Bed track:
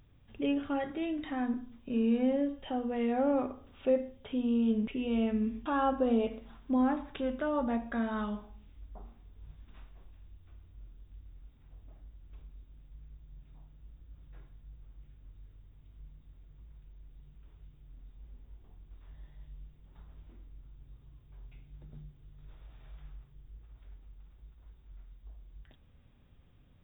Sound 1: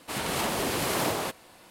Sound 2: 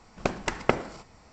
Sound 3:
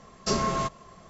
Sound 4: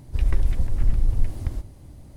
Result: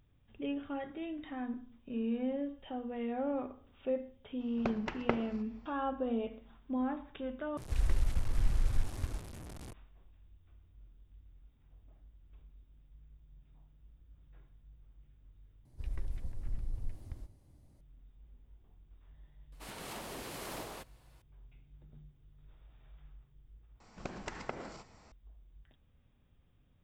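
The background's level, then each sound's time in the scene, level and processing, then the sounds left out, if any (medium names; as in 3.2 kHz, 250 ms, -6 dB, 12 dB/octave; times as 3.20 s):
bed track -6.5 dB
4.40 s: add 2 -8.5 dB + distance through air 190 m
7.57 s: replace with 4 -9.5 dB + one-bit delta coder 64 kbps, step -31 dBFS
15.65 s: replace with 4 -17.5 dB
19.52 s: add 1 -15.5 dB
23.80 s: replace with 2 -5 dB + compression 2.5:1, threshold -34 dBFS
not used: 3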